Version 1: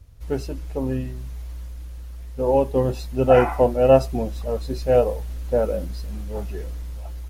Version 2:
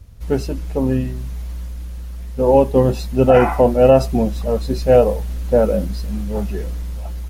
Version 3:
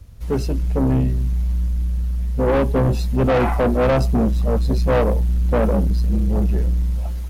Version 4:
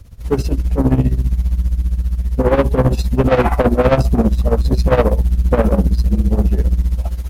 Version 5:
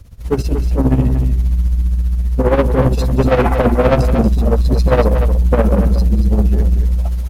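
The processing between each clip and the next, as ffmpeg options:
ffmpeg -i in.wav -af "equalizer=frequency=200:width=3.8:gain=8,alimiter=level_in=7dB:limit=-1dB:release=50:level=0:latency=1,volume=-1dB" out.wav
ffmpeg -i in.wav -filter_complex "[0:a]acrossover=split=250[link_01][link_02];[link_01]dynaudnorm=framelen=110:gausssize=9:maxgain=10dB[link_03];[link_03][link_02]amix=inputs=2:normalize=0,asoftclip=type=tanh:threshold=-13dB" out.wav
ffmpeg -i in.wav -af "tremolo=f=15:d=0.78,volume=7dB" out.wav
ffmpeg -i in.wav -af "aecho=1:1:234:0.376" out.wav

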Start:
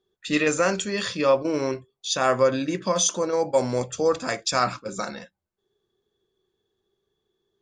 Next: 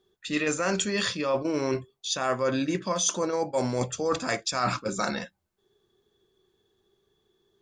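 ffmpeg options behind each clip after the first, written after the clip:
ffmpeg -i in.wav -af "equalizer=frequency=510:width_type=o:width=0.36:gain=-3,areverse,acompressor=threshold=-30dB:ratio=6,areverse,volume=6dB" out.wav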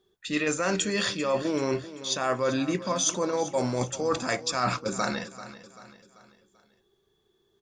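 ffmpeg -i in.wav -af "aecho=1:1:389|778|1167|1556:0.178|0.0818|0.0376|0.0173" out.wav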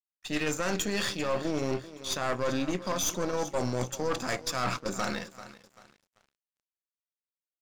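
ffmpeg -i in.wav -af "aeval=exprs='(tanh(17.8*val(0)+0.7)-tanh(0.7))/17.8':channel_layout=same,aeval=exprs='sgn(val(0))*max(abs(val(0))-0.00188,0)':channel_layout=same,volume=1.5dB" out.wav

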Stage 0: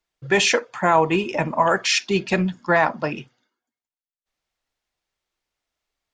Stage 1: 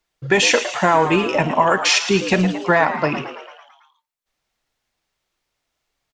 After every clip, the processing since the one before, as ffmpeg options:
ffmpeg -i in.wav -filter_complex "[0:a]acompressor=threshold=-20dB:ratio=2,asplit=2[link_01][link_02];[link_02]asplit=7[link_03][link_04][link_05][link_06][link_07][link_08][link_09];[link_03]adelay=111,afreqshift=110,volume=-11dB[link_10];[link_04]adelay=222,afreqshift=220,volume=-15.6dB[link_11];[link_05]adelay=333,afreqshift=330,volume=-20.2dB[link_12];[link_06]adelay=444,afreqshift=440,volume=-24.7dB[link_13];[link_07]adelay=555,afreqshift=550,volume=-29.3dB[link_14];[link_08]adelay=666,afreqshift=660,volume=-33.9dB[link_15];[link_09]adelay=777,afreqshift=770,volume=-38.5dB[link_16];[link_10][link_11][link_12][link_13][link_14][link_15][link_16]amix=inputs=7:normalize=0[link_17];[link_01][link_17]amix=inputs=2:normalize=0,volume=6dB" out.wav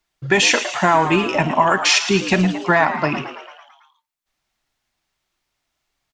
ffmpeg -i in.wav -af "equalizer=frequency=490:width=4.4:gain=-8.5,volume=1dB" out.wav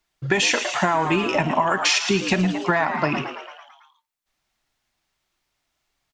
ffmpeg -i in.wav -af "acompressor=threshold=-16dB:ratio=6" out.wav

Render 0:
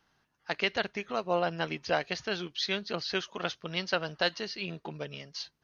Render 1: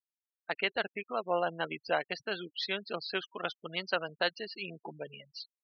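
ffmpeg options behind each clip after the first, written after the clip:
ffmpeg -i in.wav -af "afftfilt=real='re*gte(hypot(re,im),0.02)':imag='im*gte(hypot(re,im),0.02)':win_size=1024:overlap=0.75,highpass=frequency=390:poles=1,highshelf=frequency=5500:gain=-10.5" out.wav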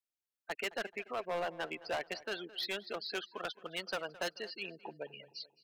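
ffmpeg -i in.wav -filter_complex "[0:a]acrossover=split=250[link_01][link_02];[link_01]acompressor=threshold=-60dB:ratio=6[link_03];[link_02]asoftclip=type=hard:threshold=-30dB[link_04];[link_03][link_04]amix=inputs=2:normalize=0,asplit=2[link_05][link_06];[link_06]adelay=216,lowpass=frequency=3600:poles=1,volume=-18dB,asplit=2[link_07][link_08];[link_08]adelay=216,lowpass=frequency=3600:poles=1,volume=0.47,asplit=2[link_09][link_10];[link_10]adelay=216,lowpass=frequency=3600:poles=1,volume=0.47,asplit=2[link_11][link_12];[link_12]adelay=216,lowpass=frequency=3600:poles=1,volume=0.47[link_13];[link_05][link_07][link_09][link_11][link_13]amix=inputs=5:normalize=0,volume=-1.5dB" out.wav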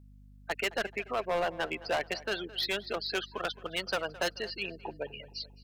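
ffmpeg -i in.wav -af "aeval=exprs='val(0)+0.00112*(sin(2*PI*50*n/s)+sin(2*PI*2*50*n/s)/2+sin(2*PI*3*50*n/s)/3+sin(2*PI*4*50*n/s)/4+sin(2*PI*5*50*n/s)/5)':channel_layout=same,volume=6dB" out.wav

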